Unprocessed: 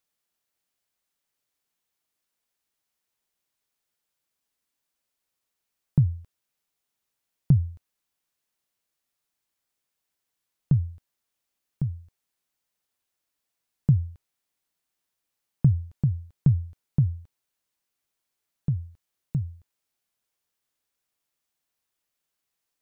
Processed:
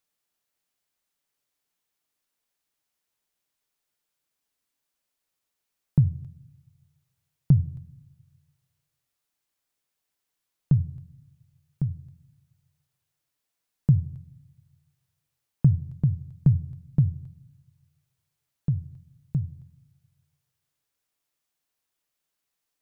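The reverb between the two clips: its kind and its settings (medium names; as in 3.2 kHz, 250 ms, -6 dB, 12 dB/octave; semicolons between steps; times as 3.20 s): simulated room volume 2300 m³, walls furnished, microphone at 0.39 m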